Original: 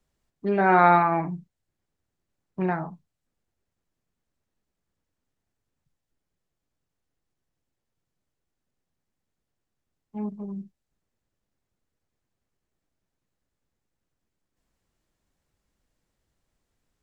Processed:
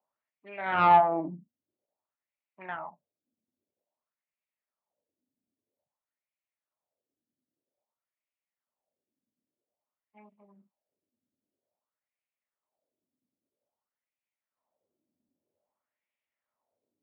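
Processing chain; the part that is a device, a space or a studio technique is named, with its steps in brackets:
wah-wah guitar rig (LFO wah 0.51 Hz 250–2,400 Hz, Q 3.6; tube saturation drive 19 dB, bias 0.55; loudspeaker in its box 93–3,400 Hz, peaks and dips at 93 Hz +10 dB, 240 Hz +6 dB, 600 Hz +10 dB, 910 Hz +4 dB, 1,600 Hz −6 dB)
level +3.5 dB

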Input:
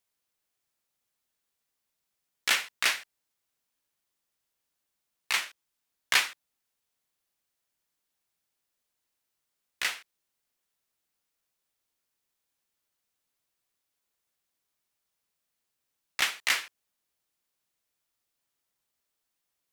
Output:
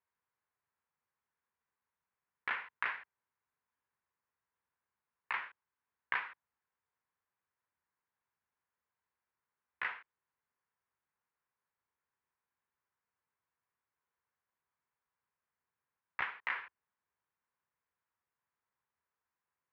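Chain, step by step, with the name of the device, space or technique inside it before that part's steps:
bass amplifier (downward compressor 6 to 1, threshold −27 dBFS, peak gain reduction 9 dB; loudspeaker in its box 67–2,100 Hz, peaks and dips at 73 Hz +5 dB, 200 Hz −3 dB, 300 Hz −9 dB, 630 Hz −6 dB, 1,000 Hz +7 dB, 1,600 Hz +3 dB)
level −2.5 dB

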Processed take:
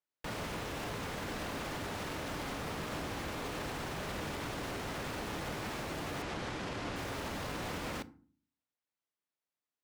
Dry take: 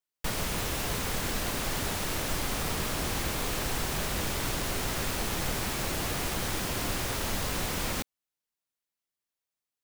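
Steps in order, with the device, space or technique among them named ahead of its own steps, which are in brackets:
0:06.22–0:06.96: low-pass filter 6,800 Hz 12 dB per octave
high-pass filter 120 Hz 6 dB per octave
low-pass filter 2,200 Hz 6 dB per octave
feedback delay network reverb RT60 0.41 s, low-frequency decay 1.6×, high-frequency decay 0.6×, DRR 16 dB
clipper into limiter (hard clipping −25 dBFS, distortion −39 dB; brickwall limiter −30.5 dBFS, peak gain reduction 5.5 dB)

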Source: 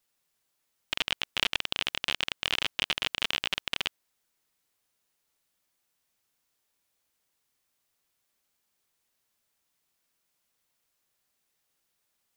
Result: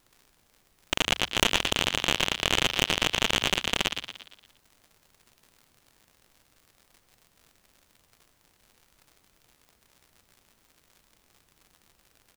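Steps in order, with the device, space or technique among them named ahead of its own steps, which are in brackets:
echo with shifted repeats 116 ms, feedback 49%, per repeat +50 Hz, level −6 dB
record under a worn stylus (stylus tracing distortion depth 0.11 ms; surface crackle 110 per second −46 dBFS; pink noise bed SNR 35 dB)
level +3 dB

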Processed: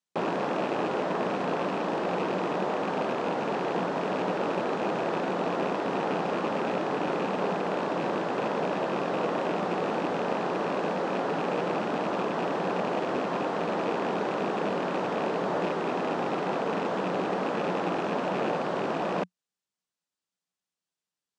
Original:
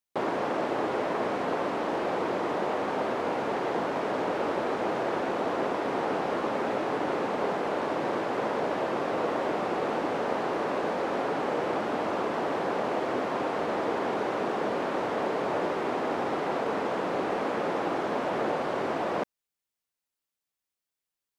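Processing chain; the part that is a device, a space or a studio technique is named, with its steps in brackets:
car door speaker with a rattle (loose part that buzzes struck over −37 dBFS, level −27 dBFS; loudspeaker in its box 89–8,600 Hz, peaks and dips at 91 Hz −4 dB, 180 Hz +9 dB, 2,200 Hz −4 dB)

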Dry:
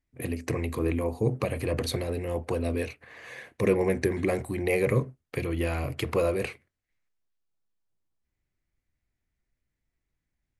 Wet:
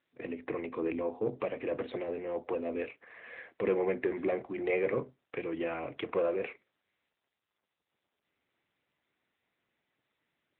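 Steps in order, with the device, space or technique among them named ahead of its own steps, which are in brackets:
telephone (band-pass filter 300–3,000 Hz; soft clipping −17.5 dBFS, distortion −21 dB; level −2 dB; AMR narrowband 10.2 kbit/s 8,000 Hz)

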